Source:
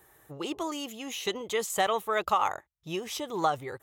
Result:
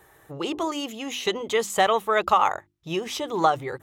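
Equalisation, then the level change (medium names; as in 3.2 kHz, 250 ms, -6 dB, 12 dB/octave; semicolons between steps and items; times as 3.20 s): treble shelf 7.9 kHz -9.5 dB; hum notches 50/100/150/200/250/300/350 Hz; +6.5 dB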